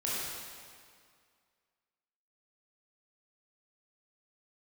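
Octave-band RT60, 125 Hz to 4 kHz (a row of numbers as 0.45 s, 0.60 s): 2.0 s, 2.1 s, 2.0 s, 2.1 s, 2.0 s, 1.8 s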